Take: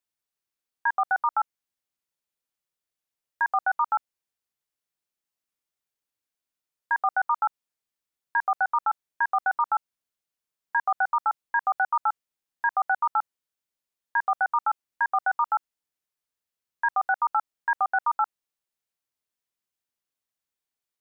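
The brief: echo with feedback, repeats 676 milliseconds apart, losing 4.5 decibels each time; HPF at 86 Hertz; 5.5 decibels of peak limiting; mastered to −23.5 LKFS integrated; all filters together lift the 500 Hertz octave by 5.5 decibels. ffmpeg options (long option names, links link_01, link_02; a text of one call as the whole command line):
ffmpeg -i in.wav -af "highpass=86,equalizer=frequency=500:width_type=o:gain=9,alimiter=limit=-18dB:level=0:latency=1,aecho=1:1:676|1352|2028|2704|3380|4056|4732|5408|6084:0.596|0.357|0.214|0.129|0.0772|0.0463|0.0278|0.0167|0.01,volume=6dB" out.wav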